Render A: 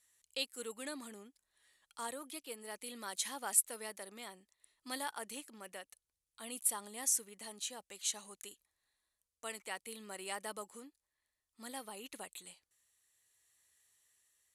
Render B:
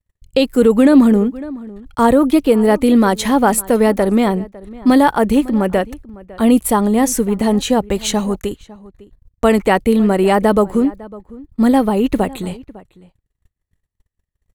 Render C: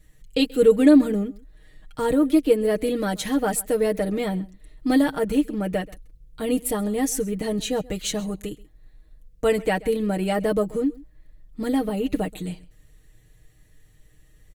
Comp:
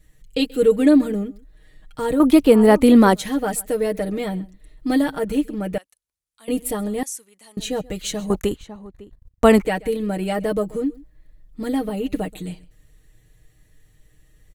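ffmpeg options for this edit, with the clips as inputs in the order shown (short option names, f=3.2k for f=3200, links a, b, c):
-filter_complex "[1:a]asplit=2[a][b];[0:a]asplit=2[c][d];[2:a]asplit=5[e][f][g][h][i];[e]atrim=end=2.202[j];[a]atrim=start=2.198:end=3.152[k];[f]atrim=start=3.148:end=5.782[l];[c]atrim=start=5.778:end=6.482[m];[g]atrim=start=6.478:end=7.032[n];[d]atrim=start=7.028:end=7.572[o];[h]atrim=start=7.568:end=8.302[p];[b]atrim=start=8.298:end=9.652[q];[i]atrim=start=9.648[r];[j][k]acrossfade=d=0.004:c1=hsin:c2=hsin[s];[s][l]acrossfade=d=0.004:c1=hsin:c2=hsin[t];[t][m]acrossfade=d=0.004:c1=hsin:c2=hsin[u];[u][n]acrossfade=d=0.004:c1=hsin:c2=hsin[v];[v][o]acrossfade=d=0.004:c1=hsin:c2=hsin[w];[w][p]acrossfade=d=0.004:c1=hsin:c2=hsin[x];[x][q]acrossfade=d=0.004:c1=hsin:c2=hsin[y];[y][r]acrossfade=d=0.004:c1=hsin:c2=hsin"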